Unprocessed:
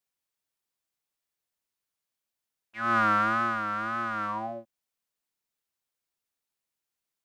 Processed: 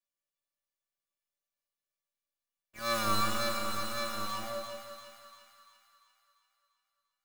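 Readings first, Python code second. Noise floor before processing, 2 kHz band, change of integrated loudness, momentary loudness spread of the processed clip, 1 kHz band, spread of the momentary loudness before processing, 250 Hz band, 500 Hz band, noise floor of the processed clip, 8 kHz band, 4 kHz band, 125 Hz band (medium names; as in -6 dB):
under -85 dBFS, -9.0 dB, -6.0 dB, 17 LU, -7.5 dB, 15 LU, -6.0 dB, +1.0 dB, under -85 dBFS, no reading, +10.5 dB, -2.5 dB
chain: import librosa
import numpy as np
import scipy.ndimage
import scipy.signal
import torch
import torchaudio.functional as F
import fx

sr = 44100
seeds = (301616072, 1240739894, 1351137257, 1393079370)

y = fx.halfwave_hold(x, sr)
y = fx.comb_fb(y, sr, f0_hz=580.0, decay_s=0.28, harmonics='all', damping=0.0, mix_pct=90)
y = fx.echo_split(y, sr, split_hz=990.0, low_ms=170, high_ms=345, feedback_pct=52, wet_db=-6.5)
y = F.gain(torch.from_numpy(y), 3.5).numpy()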